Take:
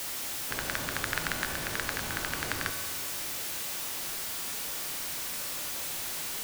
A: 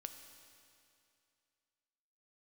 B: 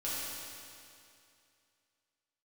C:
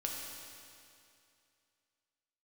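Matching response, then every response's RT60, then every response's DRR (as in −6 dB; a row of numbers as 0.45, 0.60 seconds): A; 2.5, 2.5, 2.5 seconds; 6.5, −9.5, −1.5 decibels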